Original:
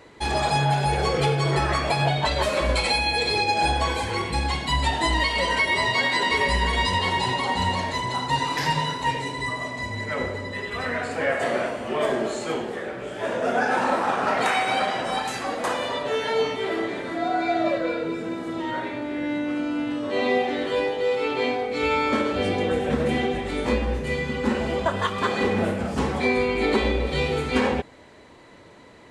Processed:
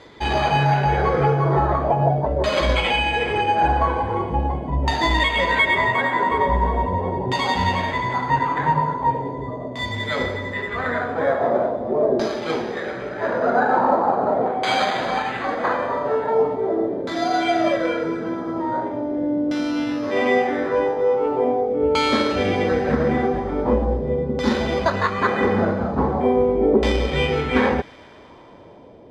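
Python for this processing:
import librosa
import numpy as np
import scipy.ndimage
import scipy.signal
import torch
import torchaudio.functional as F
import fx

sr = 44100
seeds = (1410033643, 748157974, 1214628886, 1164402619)

y = np.repeat(scipy.signal.resample_poly(x, 1, 8), 8)[:len(x)]
y = fx.filter_lfo_lowpass(y, sr, shape='saw_down', hz=0.41, low_hz=490.0, high_hz=4400.0, q=1.4)
y = fx.echo_wet_highpass(y, sr, ms=115, feedback_pct=81, hz=3700.0, wet_db=-16.0)
y = y * 10.0 ** (3.5 / 20.0)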